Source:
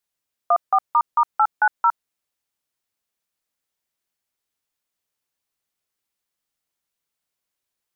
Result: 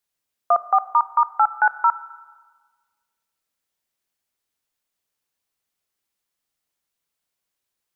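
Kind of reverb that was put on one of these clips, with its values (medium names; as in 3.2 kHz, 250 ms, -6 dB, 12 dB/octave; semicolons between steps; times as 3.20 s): Schroeder reverb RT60 1.5 s, combs from 25 ms, DRR 15.5 dB; trim +1 dB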